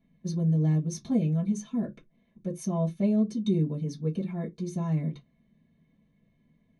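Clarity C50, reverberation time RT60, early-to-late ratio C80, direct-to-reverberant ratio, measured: 21.5 dB, no single decay rate, 32.0 dB, -5.5 dB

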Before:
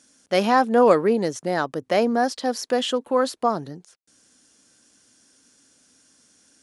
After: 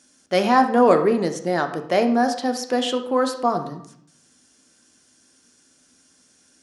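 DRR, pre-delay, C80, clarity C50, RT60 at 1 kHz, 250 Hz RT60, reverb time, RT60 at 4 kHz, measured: 5.5 dB, 3 ms, 13.0 dB, 10.0 dB, 0.75 s, 0.90 s, 0.70 s, 0.50 s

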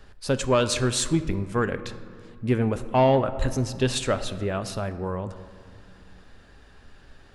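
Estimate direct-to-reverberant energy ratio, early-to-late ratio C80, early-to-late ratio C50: 11.0 dB, 14.0 dB, 13.0 dB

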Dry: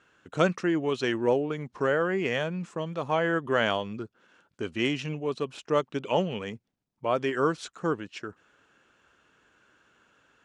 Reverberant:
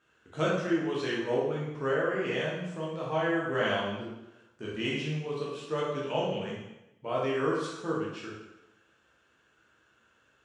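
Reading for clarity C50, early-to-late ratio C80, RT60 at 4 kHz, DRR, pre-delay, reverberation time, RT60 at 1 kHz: 0.5 dB, 4.5 dB, 0.85 s, -6.0 dB, 9 ms, 0.90 s, 0.90 s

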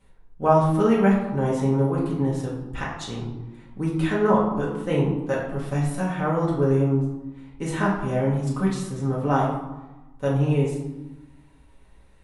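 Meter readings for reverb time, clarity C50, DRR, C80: 1.1 s, 3.0 dB, -6.0 dB, 6.5 dB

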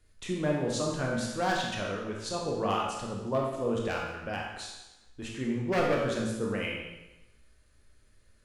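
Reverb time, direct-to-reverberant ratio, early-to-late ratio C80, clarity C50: 1.0 s, -2.0 dB, 4.0 dB, 1.5 dB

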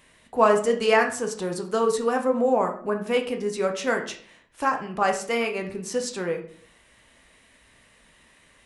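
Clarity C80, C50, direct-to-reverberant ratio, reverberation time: 14.0 dB, 10.5 dB, 3.5 dB, 0.50 s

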